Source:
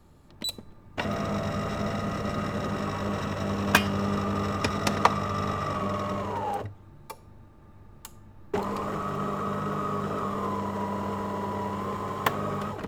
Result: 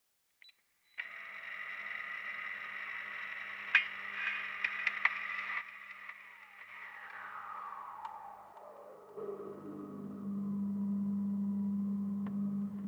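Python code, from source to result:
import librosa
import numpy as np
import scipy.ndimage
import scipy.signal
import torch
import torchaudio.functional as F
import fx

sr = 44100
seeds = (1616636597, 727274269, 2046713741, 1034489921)

y = fx.fade_in_head(x, sr, length_s=1.93)
y = scipy.signal.sosfilt(scipy.signal.butter(2, 7300.0, 'lowpass', fs=sr, output='sos'), y)
y = fx.echo_diffused(y, sr, ms=534, feedback_pct=47, wet_db=-9.0)
y = fx.over_compress(y, sr, threshold_db=-40.0, ratio=-1.0, at=(5.6, 9.16), fade=0.02)
y = fx.low_shelf(y, sr, hz=96.0, db=7.5)
y = fx.filter_sweep_bandpass(y, sr, from_hz=2100.0, to_hz=200.0, start_s=6.8, end_s=10.39, q=6.6)
y = fx.peak_eq(y, sr, hz=2400.0, db=12.0, octaves=2.4)
y = fx.echo_feedback(y, sr, ms=520, feedback_pct=43, wet_db=-13)
y = fx.quant_dither(y, sr, seeds[0], bits=12, dither='triangular')
y = y * 10.0 ** (-5.5 / 20.0)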